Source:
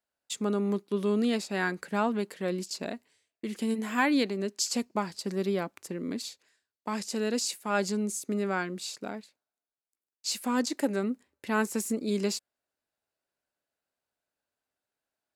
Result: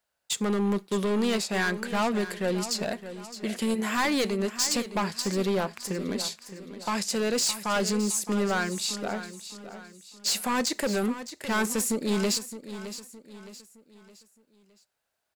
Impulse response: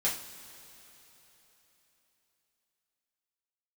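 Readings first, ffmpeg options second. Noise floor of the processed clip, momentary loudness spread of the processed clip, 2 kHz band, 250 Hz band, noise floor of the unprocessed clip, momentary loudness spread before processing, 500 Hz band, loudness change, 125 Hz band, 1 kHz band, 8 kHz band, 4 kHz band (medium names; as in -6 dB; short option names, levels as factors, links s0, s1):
-78 dBFS, 15 LU, +3.5 dB, +1.5 dB, under -85 dBFS, 10 LU, +2.5 dB, +3.0 dB, +3.5 dB, +3.0 dB, +6.5 dB, +6.5 dB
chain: -filter_complex "[0:a]equalizer=f=280:t=o:w=0.87:g=-8.5,volume=31.6,asoftclip=hard,volume=0.0316,aecho=1:1:615|1230|1845|2460:0.237|0.0972|0.0399|0.0163,asplit=2[s0][s1];[1:a]atrim=start_sample=2205,atrim=end_sample=4410[s2];[s1][s2]afir=irnorm=-1:irlink=0,volume=0.0596[s3];[s0][s3]amix=inputs=2:normalize=0,volume=2.37"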